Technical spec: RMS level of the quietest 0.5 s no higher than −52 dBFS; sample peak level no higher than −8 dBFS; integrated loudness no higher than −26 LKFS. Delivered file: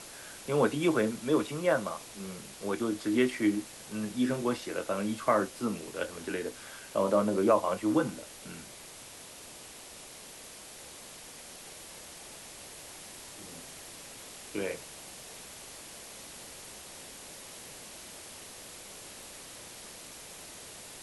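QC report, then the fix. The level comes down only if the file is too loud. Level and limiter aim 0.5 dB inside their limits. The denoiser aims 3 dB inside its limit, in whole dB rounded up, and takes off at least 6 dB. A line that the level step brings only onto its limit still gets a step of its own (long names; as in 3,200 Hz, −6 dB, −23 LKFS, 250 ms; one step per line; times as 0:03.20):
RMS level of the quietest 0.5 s −48 dBFS: out of spec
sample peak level −12.5 dBFS: in spec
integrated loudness −31.5 LKFS: in spec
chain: broadband denoise 7 dB, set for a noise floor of −48 dBFS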